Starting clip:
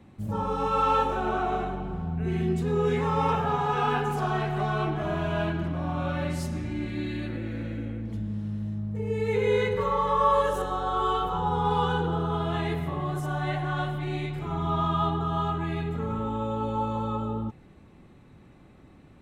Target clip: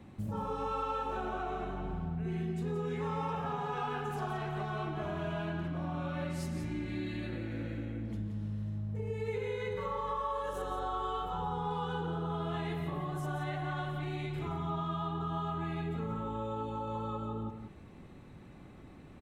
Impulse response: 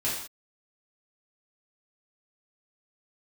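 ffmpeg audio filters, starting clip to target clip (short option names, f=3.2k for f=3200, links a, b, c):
-filter_complex "[0:a]acompressor=threshold=-34dB:ratio=6,asplit=2[a][b];[b]aecho=0:1:174:0.376[c];[a][c]amix=inputs=2:normalize=0"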